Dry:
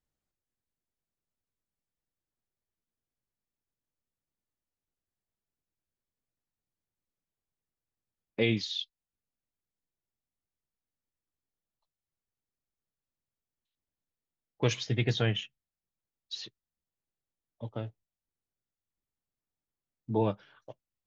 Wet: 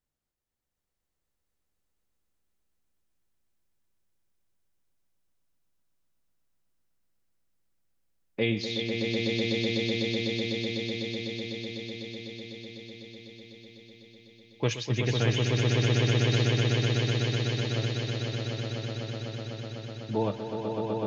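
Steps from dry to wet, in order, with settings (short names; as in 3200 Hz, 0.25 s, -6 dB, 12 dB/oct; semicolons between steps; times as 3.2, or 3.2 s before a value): swelling echo 0.125 s, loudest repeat 8, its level -4 dB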